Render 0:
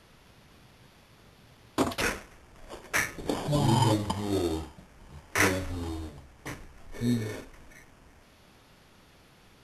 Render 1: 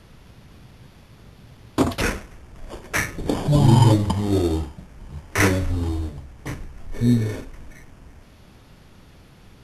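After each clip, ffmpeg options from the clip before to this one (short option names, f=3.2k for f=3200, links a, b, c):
-af "lowshelf=f=270:g=10,volume=3.5dB"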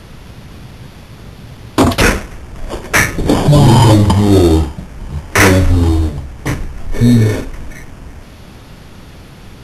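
-af "apsyclip=15.5dB,volume=-2dB"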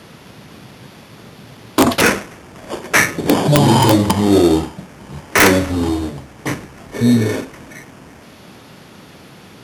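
-af "highpass=170,aeval=exprs='(mod(0.944*val(0)+1,2)-1)/0.944':c=same,volume=-1.5dB"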